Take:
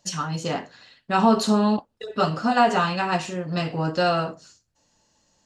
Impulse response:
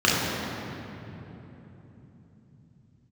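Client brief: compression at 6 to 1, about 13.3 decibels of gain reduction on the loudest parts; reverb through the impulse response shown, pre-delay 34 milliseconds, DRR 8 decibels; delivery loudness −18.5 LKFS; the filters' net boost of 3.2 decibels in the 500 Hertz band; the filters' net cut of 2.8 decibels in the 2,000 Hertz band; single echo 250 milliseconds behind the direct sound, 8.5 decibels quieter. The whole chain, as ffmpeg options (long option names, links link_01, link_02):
-filter_complex "[0:a]equalizer=frequency=500:width_type=o:gain=4.5,equalizer=frequency=2000:width_type=o:gain=-4.5,acompressor=threshold=-26dB:ratio=6,aecho=1:1:250:0.376,asplit=2[link_01][link_02];[1:a]atrim=start_sample=2205,adelay=34[link_03];[link_02][link_03]afir=irnorm=-1:irlink=0,volume=-28.5dB[link_04];[link_01][link_04]amix=inputs=2:normalize=0,volume=11dB"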